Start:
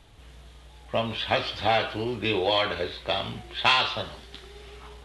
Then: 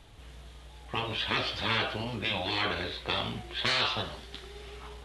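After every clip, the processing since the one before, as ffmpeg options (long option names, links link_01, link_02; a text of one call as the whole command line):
ffmpeg -i in.wav -af "afftfilt=real='re*lt(hypot(re,im),0.178)':imag='im*lt(hypot(re,im),0.178)':win_size=1024:overlap=0.75" out.wav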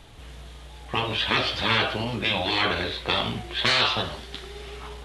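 ffmpeg -i in.wav -af "bandreject=frequency=50:width_type=h:width=6,bandreject=frequency=100:width_type=h:width=6,volume=6.5dB" out.wav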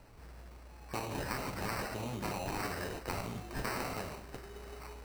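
ffmpeg -i in.wav -af "bandreject=frequency=73.91:width_type=h:width=4,bandreject=frequency=147.82:width_type=h:width=4,bandreject=frequency=221.73:width_type=h:width=4,bandreject=frequency=295.64:width_type=h:width=4,bandreject=frequency=369.55:width_type=h:width=4,bandreject=frequency=443.46:width_type=h:width=4,bandreject=frequency=517.37:width_type=h:width=4,bandreject=frequency=591.28:width_type=h:width=4,bandreject=frequency=665.19:width_type=h:width=4,bandreject=frequency=739.1:width_type=h:width=4,bandreject=frequency=813.01:width_type=h:width=4,bandreject=frequency=886.92:width_type=h:width=4,bandreject=frequency=960.83:width_type=h:width=4,bandreject=frequency=1034.74:width_type=h:width=4,bandreject=frequency=1108.65:width_type=h:width=4,bandreject=frequency=1182.56:width_type=h:width=4,bandreject=frequency=1256.47:width_type=h:width=4,bandreject=frequency=1330.38:width_type=h:width=4,bandreject=frequency=1404.29:width_type=h:width=4,bandreject=frequency=1478.2:width_type=h:width=4,bandreject=frequency=1552.11:width_type=h:width=4,bandreject=frequency=1626.02:width_type=h:width=4,bandreject=frequency=1699.93:width_type=h:width=4,bandreject=frequency=1773.84:width_type=h:width=4,bandreject=frequency=1847.75:width_type=h:width=4,bandreject=frequency=1921.66:width_type=h:width=4,bandreject=frequency=1995.57:width_type=h:width=4,bandreject=frequency=2069.48:width_type=h:width=4,bandreject=frequency=2143.39:width_type=h:width=4,bandreject=frequency=2217.3:width_type=h:width=4,bandreject=frequency=2291.21:width_type=h:width=4,bandreject=frequency=2365.12:width_type=h:width=4,bandreject=frequency=2439.03:width_type=h:width=4,bandreject=frequency=2512.94:width_type=h:width=4,bandreject=frequency=2586.85:width_type=h:width=4,acrusher=samples=13:mix=1:aa=0.000001,acompressor=threshold=-25dB:ratio=6,volume=-8.5dB" out.wav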